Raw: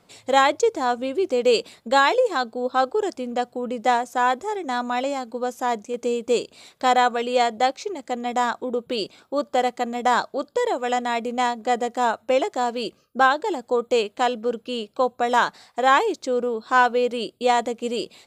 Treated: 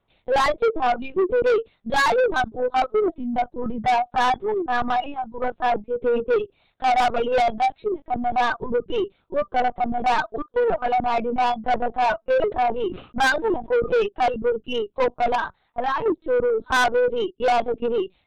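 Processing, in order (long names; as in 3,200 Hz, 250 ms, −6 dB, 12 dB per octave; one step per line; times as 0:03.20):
noise reduction from a noise print of the clip's start 20 dB
linear-prediction vocoder at 8 kHz pitch kept
0:15.35–0:16.06: downward compressor 4 to 1, threshold −28 dBFS, peak gain reduction 12.5 dB
soft clipping −22.5 dBFS, distortion −8 dB
0:12.33–0:13.90: level that may fall only so fast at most 130 dB per second
level +7 dB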